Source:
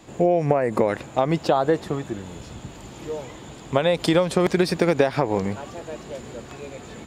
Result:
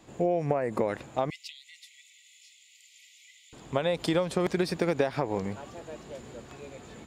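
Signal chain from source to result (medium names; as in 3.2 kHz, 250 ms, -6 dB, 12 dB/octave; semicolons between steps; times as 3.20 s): 1.30–3.53 s: brick-wall FIR high-pass 1.9 kHz; trim -7.5 dB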